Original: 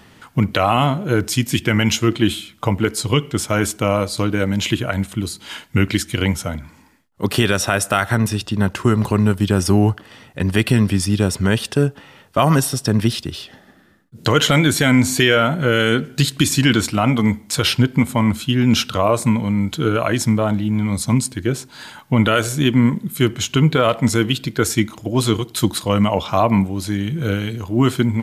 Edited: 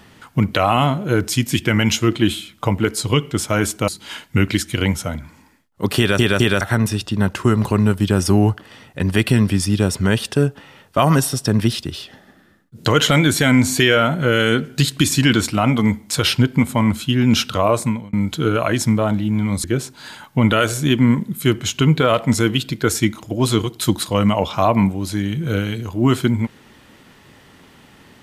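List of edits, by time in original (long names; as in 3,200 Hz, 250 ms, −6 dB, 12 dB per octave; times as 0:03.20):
0:03.88–0:05.28: remove
0:07.38: stutter in place 0.21 s, 3 plays
0:19.17–0:19.53: fade out
0:21.04–0:21.39: remove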